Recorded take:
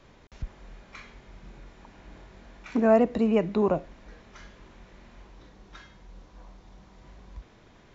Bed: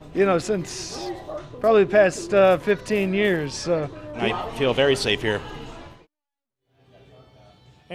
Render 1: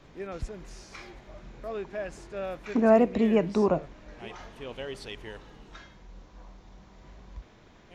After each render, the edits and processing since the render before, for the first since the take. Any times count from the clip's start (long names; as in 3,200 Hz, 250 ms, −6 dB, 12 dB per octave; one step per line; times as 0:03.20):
mix in bed −19 dB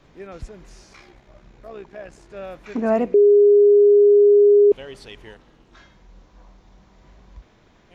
0:00.93–0:02.30: amplitude modulation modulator 64 Hz, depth 40%
0:03.14–0:04.72: beep over 410 Hz −9 dBFS
0:05.34–0:05.77: amplitude modulation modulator 290 Hz, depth 85%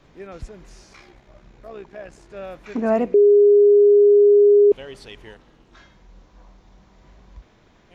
no processing that can be heard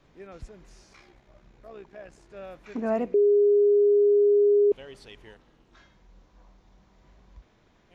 level −7 dB